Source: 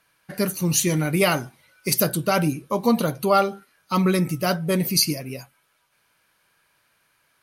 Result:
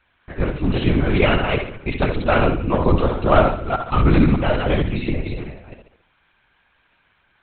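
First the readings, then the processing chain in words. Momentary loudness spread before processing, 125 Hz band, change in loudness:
10 LU, +5.5 dB, +2.5 dB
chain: reverse delay 0.198 s, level -4.5 dB; flutter echo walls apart 11.9 m, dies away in 0.63 s; LPC vocoder at 8 kHz whisper; gain +2.5 dB

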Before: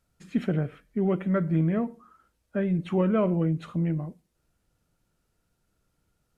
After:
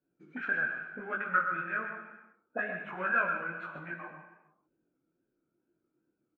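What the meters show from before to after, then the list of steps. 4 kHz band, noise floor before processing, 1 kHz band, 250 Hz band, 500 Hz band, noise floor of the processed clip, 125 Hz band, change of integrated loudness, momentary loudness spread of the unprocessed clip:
n/a, -75 dBFS, +4.5 dB, -20.5 dB, -12.5 dB, -82 dBFS, -24.5 dB, -6.0 dB, 9 LU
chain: bell 76 Hz -12.5 dB 0.6 oct; small resonant body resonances 1500/2400 Hz, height 15 dB, ringing for 25 ms; in parallel at -11 dB: overloaded stage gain 20 dB; on the sum: wow and flutter 120 cents; auto-wah 320–1500 Hz, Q 4.7, up, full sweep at -21.5 dBFS; on a send: echo 0.129 s -8.5 dB; on the sum: non-linear reverb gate 0.47 s falling, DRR 6 dB; detuned doubles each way 36 cents; gain +8.5 dB

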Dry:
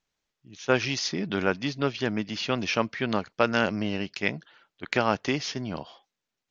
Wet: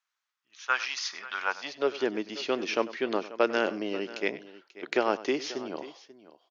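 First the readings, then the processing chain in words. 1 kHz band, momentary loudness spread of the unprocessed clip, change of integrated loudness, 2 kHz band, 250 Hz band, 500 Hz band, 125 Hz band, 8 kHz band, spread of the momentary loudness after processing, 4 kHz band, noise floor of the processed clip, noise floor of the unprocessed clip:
-2.0 dB, 10 LU, -2.5 dB, -2.5 dB, -5.5 dB, -0.5 dB, under -15 dB, n/a, 12 LU, -4.0 dB, under -85 dBFS, under -85 dBFS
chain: high-pass sweep 1200 Hz -> 360 Hz, 1.38–1.96; tapped delay 97/538 ms -17/-17 dB; gain -4.5 dB

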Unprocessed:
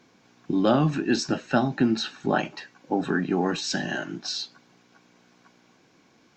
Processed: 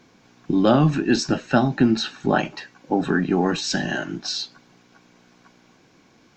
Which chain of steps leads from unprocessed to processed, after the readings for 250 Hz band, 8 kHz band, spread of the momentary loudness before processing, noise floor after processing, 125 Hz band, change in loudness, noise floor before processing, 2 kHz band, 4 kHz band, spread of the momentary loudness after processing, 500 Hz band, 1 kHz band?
+4.5 dB, +3.5 dB, 9 LU, -57 dBFS, +5.5 dB, +4.0 dB, -61 dBFS, +3.5 dB, +3.5 dB, 9 LU, +4.0 dB, +3.5 dB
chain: low shelf 71 Hz +11 dB; gain +3.5 dB

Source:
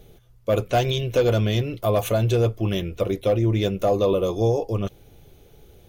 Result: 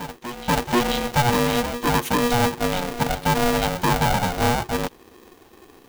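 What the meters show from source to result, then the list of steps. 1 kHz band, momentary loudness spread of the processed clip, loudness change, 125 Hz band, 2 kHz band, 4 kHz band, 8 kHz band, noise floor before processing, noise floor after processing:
+8.5 dB, 6 LU, +1.0 dB, -3.5 dB, +10.5 dB, +5.5 dB, +10.5 dB, -52 dBFS, -51 dBFS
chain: reverse echo 0.486 s -13 dB; polarity switched at an audio rate 360 Hz

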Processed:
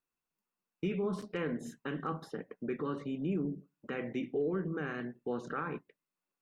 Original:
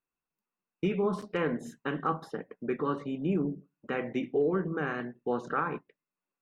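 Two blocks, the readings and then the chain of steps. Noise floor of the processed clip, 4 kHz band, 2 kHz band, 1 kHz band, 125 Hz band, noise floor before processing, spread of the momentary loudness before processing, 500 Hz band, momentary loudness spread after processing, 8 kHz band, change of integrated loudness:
under -85 dBFS, -4.0 dB, -5.5 dB, -8.0 dB, -3.5 dB, under -85 dBFS, 7 LU, -5.5 dB, 7 LU, n/a, -5.0 dB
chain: dynamic EQ 890 Hz, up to -6 dB, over -45 dBFS, Q 1; in parallel at +1.5 dB: limiter -29.5 dBFS, peak gain reduction 9.5 dB; on the sum: gain -7.5 dB

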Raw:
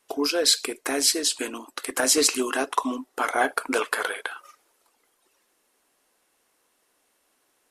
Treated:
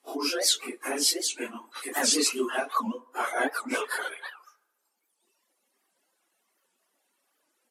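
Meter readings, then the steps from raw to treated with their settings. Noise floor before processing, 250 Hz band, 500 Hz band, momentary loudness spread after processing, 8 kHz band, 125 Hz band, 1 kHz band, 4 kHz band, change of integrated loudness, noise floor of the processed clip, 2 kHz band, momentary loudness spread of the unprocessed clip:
-70 dBFS, -4.0 dB, -5.0 dB, 13 LU, -3.5 dB, n/a, -4.0 dB, -3.5 dB, -3.5 dB, -77 dBFS, -3.5 dB, 13 LU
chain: phase scrambler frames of 0.1 s; notch 460 Hz, Q 12; reverb removal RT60 1.5 s; Chebyshev high-pass 180 Hz, order 4; band-limited delay 72 ms, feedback 57%, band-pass 840 Hz, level -21 dB; record warp 78 rpm, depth 250 cents; gain -1.5 dB

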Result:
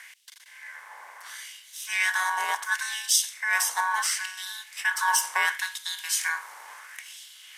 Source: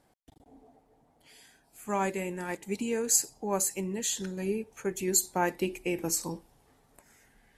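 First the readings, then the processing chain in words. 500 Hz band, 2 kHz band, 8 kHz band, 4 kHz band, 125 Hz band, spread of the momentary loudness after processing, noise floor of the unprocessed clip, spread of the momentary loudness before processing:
-18.0 dB, +16.0 dB, +2.0 dB, +10.5 dB, under -40 dB, 20 LU, -68 dBFS, 10 LU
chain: per-bin compression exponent 0.6; ring modulator 1300 Hz; LFO high-pass sine 0.72 Hz 880–3500 Hz; gain +2 dB

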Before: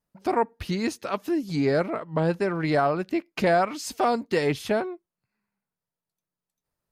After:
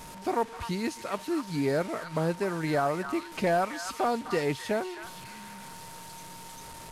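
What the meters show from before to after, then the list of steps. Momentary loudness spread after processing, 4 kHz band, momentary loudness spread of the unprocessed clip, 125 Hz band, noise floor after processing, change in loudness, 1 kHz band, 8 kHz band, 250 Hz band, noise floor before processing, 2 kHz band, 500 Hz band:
16 LU, -3.0 dB, 6 LU, -4.5 dB, -45 dBFS, -4.5 dB, -4.0 dB, -0.5 dB, -4.5 dB, under -85 dBFS, -3.5 dB, -4.5 dB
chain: delta modulation 64 kbps, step -35 dBFS; delay with a stepping band-pass 0.259 s, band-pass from 1400 Hz, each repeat 1.4 oct, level -5 dB; whine 920 Hz -42 dBFS; gain -4.5 dB

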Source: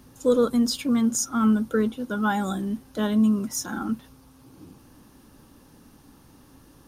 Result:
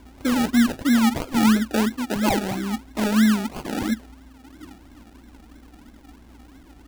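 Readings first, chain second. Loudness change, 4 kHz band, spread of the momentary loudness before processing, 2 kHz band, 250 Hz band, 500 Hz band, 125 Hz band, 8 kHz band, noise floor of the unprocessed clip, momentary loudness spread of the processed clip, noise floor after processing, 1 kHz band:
+2.5 dB, +5.0 dB, 9 LU, +6.5 dB, +3.0 dB, -3.5 dB, +2.5 dB, -2.5 dB, -54 dBFS, 9 LU, -49 dBFS, +3.5 dB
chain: median filter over 5 samples; hum 60 Hz, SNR 28 dB; fixed phaser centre 720 Hz, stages 8; decimation with a swept rate 33×, swing 60% 3 Hz; gain +6 dB

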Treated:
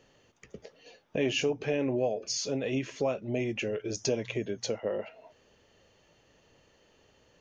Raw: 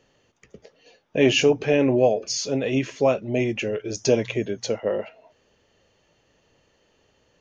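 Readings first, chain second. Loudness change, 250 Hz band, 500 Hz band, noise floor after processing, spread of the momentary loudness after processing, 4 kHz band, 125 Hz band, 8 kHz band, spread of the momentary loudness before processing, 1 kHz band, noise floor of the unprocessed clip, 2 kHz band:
-9.0 dB, -9.0 dB, -9.5 dB, -65 dBFS, 9 LU, -8.0 dB, -8.5 dB, n/a, 9 LU, -10.0 dB, -65 dBFS, -8.5 dB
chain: compressor 2:1, threshold -34 dBFS, peak gain reduction 12 dB

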